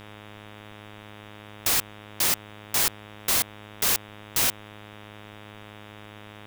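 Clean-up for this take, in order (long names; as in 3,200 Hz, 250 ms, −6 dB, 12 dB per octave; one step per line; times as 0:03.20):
hum removal 104.9 Hz, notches 36
downward expander −37 dBFS, range −21 dB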